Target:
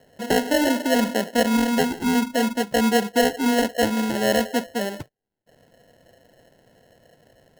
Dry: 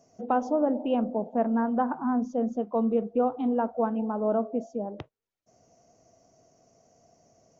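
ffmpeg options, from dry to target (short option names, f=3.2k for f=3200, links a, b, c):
-filter_complex "[0:a]acrossover=split=320|1100[a][b][c];[c]acompressor=threshold=-57dB:ratio=6[d];[a][b][d]amix=inputs=3:normalize=0,acrusher=samples=37:mix=1:aa=0.000001,volume=6dB"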